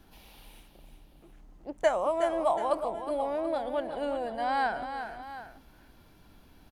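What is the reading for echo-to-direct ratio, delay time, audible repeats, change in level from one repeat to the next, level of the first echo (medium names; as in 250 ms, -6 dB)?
-8.0 dB, 367 ms, 2, -5.5 dB, -9.0 dB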